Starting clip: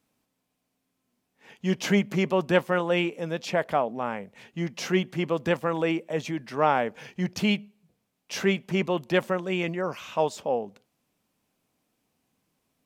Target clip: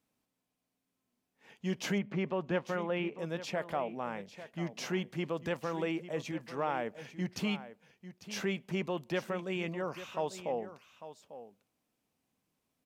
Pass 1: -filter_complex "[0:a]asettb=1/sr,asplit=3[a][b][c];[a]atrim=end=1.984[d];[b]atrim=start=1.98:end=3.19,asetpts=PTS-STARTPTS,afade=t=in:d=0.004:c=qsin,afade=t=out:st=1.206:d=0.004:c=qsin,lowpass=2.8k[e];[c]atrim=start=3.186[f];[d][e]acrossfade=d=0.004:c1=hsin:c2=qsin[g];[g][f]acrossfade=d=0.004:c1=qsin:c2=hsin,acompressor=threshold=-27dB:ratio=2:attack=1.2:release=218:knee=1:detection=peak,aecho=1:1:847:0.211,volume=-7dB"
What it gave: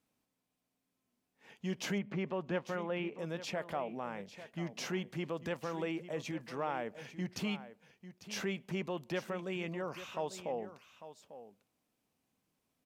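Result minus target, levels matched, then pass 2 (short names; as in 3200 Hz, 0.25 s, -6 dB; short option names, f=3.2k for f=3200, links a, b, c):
compressor: peak gain reduction +3.5 dB
-filter_complex "[0:a]asettb=1/sr,asplit=3[a][b][c];[a]atrim=end=1.984[d];[b]atrim=start=1.98:end=3.19,asetpts=PTS-STARTPTS,afade=t=in:d=0.004:c=qsin,afade=t=out:st=1.206:d=0.004:c=qsin,lowpass=2.8k[e];[c]atrim=start=3.186[f];[d][e]acrossfade=d=0.004:c1=hsin:c2=qsin[g];[g][f]acrossfade=d=0.004:c1=qsin:c2=hsin,acompressor=threshold=-20.5dB:ratio=2:attack=1.2:release=218:knee=1:detection=peak,aecho=1:1:847:0.211,volume=-7dB"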